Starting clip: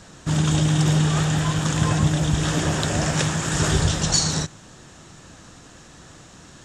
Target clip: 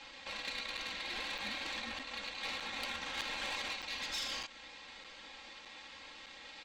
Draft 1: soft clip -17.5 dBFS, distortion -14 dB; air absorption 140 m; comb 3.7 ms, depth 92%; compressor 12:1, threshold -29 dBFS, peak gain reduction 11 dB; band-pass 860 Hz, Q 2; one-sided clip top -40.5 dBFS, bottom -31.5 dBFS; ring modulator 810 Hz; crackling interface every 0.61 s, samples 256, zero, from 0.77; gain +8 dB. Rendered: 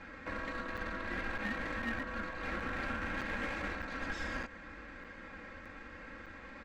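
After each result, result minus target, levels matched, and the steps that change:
soft clip: distortion +13 dB; 1000 Hz band +3.0 dB
change: soft clip -8 dBFS, distortion -27 dB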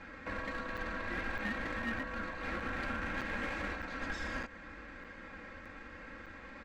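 1000 Hz band +3.0 dB
change: band-pass 2800 Hz, Q 2

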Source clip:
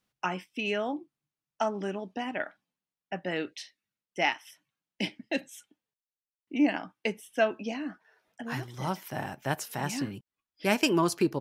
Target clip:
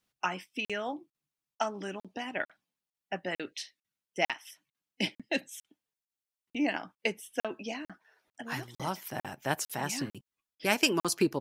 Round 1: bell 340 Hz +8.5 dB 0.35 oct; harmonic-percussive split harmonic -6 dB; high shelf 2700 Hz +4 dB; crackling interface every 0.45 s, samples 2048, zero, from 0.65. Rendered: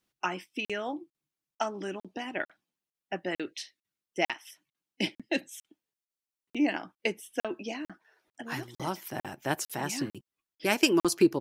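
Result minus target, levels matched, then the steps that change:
250 Hz band +2.5 dB
remove: bell 340 Hz +8.5 dB 0.35 oct

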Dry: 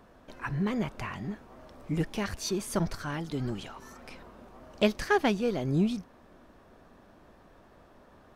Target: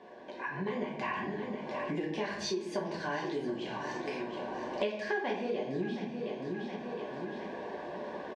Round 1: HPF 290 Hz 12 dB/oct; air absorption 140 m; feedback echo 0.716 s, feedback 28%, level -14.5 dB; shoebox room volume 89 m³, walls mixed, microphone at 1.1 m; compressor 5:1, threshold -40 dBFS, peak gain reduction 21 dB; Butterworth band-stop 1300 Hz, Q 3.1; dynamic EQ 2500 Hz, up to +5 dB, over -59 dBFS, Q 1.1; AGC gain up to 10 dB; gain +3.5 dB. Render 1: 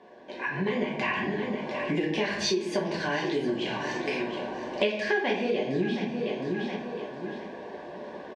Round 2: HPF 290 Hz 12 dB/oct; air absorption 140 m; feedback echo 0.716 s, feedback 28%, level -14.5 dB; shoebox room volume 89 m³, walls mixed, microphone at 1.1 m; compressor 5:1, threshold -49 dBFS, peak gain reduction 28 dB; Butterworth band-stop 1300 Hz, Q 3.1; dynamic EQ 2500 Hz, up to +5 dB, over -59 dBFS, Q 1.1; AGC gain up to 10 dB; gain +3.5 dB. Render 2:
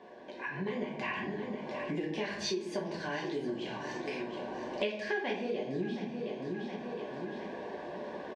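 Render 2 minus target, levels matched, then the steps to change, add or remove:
1000 Hz band -2.5 dB
change: dynamic EQ 1100 Hz, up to +5 dB, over -59 dBFS, Q 1.1

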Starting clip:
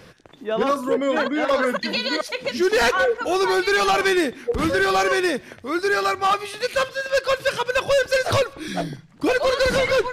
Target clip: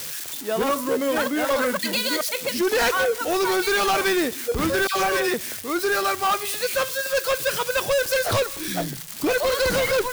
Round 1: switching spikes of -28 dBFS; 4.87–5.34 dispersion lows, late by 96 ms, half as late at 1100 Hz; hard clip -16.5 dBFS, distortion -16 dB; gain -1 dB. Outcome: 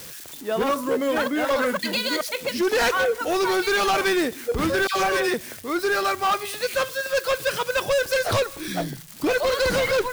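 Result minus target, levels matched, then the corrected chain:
switching spikes: distortion -7 dB
switching spikes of -20.5 dBFS; 4.87–5.34 dispersion lows, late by 96 ms, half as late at 1100 Hz; hard clip -16.5 dBFS, distortion -16 dB; gain -1 dB

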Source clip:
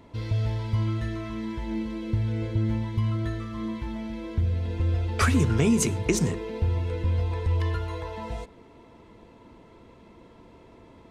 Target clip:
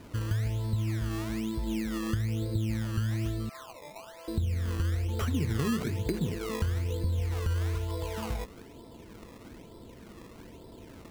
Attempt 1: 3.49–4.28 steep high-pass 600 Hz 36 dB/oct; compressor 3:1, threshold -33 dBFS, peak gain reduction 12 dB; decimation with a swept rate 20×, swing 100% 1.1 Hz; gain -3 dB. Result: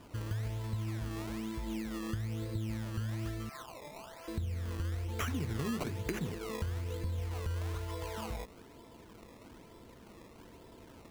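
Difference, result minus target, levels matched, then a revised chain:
1000 Hz band +4.0 dB
3.49–4.28 steep high-pass 600 Hz 36 dB/oct; compressor 3:1, threshold -33 dBFS, peak gain reduction 12 dB; tilt shelf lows +7 dB, about 1300 Hz; decimation with a swept rate 20×, swing 100% 1.1 Hz; gain -3 dB

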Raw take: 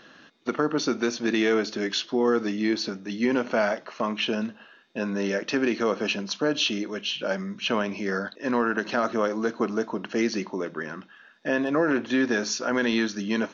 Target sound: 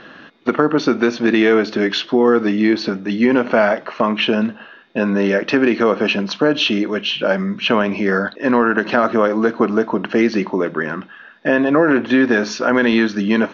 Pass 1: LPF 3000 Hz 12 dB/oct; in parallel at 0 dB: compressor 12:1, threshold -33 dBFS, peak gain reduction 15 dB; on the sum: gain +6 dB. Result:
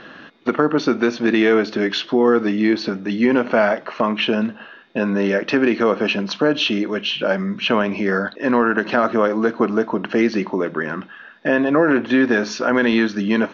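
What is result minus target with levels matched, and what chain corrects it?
compressor: peak gain reduction +7.5 dB
LPF 3000 Hz 12 dB/oct; in parallel at 0 dB: compressor 12:1, threshold -25 dBFS, peak gain reduction 8 dB; on the sum: gain +6 dB

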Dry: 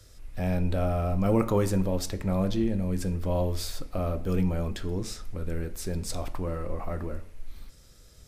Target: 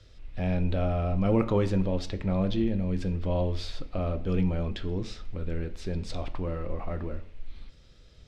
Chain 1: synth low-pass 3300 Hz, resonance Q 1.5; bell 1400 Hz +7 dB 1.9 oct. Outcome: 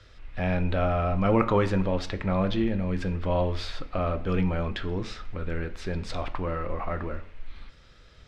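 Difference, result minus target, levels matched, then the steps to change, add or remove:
1000 Hz band +6.0 dB
change: bell 1400 Hz -3.5 dB 1.9 oct

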